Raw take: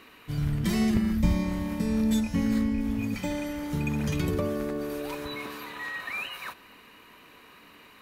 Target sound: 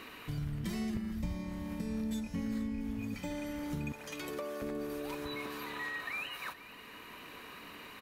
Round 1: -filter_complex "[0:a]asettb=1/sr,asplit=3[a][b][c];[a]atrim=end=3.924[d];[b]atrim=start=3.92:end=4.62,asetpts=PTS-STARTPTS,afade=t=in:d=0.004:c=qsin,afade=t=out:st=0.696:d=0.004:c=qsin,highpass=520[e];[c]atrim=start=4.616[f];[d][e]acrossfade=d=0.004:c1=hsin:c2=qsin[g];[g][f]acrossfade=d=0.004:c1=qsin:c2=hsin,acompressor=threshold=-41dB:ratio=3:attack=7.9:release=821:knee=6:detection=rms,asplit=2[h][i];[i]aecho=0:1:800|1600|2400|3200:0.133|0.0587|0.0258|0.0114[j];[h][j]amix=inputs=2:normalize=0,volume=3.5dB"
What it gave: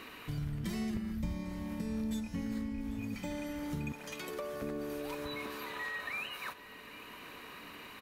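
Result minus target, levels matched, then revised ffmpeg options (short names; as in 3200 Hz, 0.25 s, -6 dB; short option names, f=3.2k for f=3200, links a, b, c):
echo 0.329 s late
-filter_complex "[0:a]asettb=1/sr,asplit=3[a][b][c];[a]atrim=end=3.924[d];[b]atrim=start=3.92:end=4.62,asetpts=PTS-STARTPTS,afade=t=in:d=0.004:c=qsin,afade=t=out:st=0.696:d=0.004:c=qsin,highpass=520[e];[c]atrim=start=4.616[f];[d][e]acrossfade=d=0.004:c1=hsin:c2=qsin[g];[g][f]acrossfade=d=0.004:c1=qsin:c2=hsin,acompressor=threshold=-41dB:ratio=3:attack=7.9:release=821:knee=6:detection=rms,asplit=2[h][i];[i]aecho=0:1:471|942|1413|1884:0.133|0.0587|0.0258|0.0114[j];[h][j]amix=inputs=2:normalize=0,volume=3.5dB"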